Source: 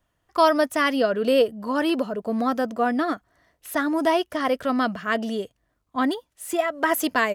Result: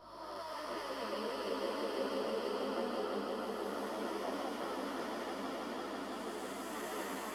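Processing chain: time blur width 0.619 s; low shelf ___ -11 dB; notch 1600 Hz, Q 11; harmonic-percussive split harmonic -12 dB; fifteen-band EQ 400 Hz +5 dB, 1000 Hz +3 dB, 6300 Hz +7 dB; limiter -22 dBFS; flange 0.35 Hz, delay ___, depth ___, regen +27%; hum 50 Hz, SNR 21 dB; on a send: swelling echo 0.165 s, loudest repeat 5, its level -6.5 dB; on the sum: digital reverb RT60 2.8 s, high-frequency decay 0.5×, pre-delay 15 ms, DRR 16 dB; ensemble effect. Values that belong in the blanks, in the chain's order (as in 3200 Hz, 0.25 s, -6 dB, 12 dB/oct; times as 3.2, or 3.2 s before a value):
160 Hz, 8.2 ms, 7.4 ms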